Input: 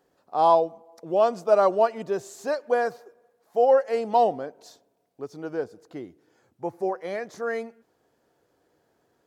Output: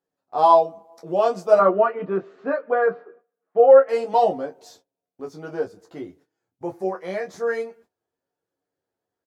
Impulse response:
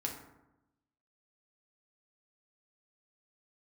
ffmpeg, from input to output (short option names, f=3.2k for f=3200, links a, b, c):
-filter_complex "[0:a]flanger=delay=5.9:depth=6.8:regen=-45:speed=0.47:shape=triangular,agate=range=-19dB:threshold=-59dB:ratio=16:detection=peak,asettb=1/sr,asplit=3[a][b][c];[a]atrim=end=1.594[d];[b]atrim=start=1.59:end=3.89,asetpts=PTS-STARTPTS,afade=t=in:d=0.004:c=qsin,afade=t=out:st=2.296:d=0.004:c=qsin,highpass=180,equalizer=f=190:t=q:w=4:g=6,equalizer=f=280:t=q:w=4:g=4,equalizer=f=440:t=q:w=4:g=4,equalizer=f=860:t=q:w=4:g=-5,equalizer=f=1.3k:t=q:w=4:g=8,lowpass=f=2.5k:w=0.5412,lowpass=f=2.5k:w=1.3066[e];[c]atrim=start=3.886[f];[d][e]acrossfade=d=0.004:c1=hsin:c2=qsin[g];[g][f]acrossfade=d=0.004:c1=qsin:c2=hsin,aecho=1:1:11|26:0.631|0.376,volume=4.5dB"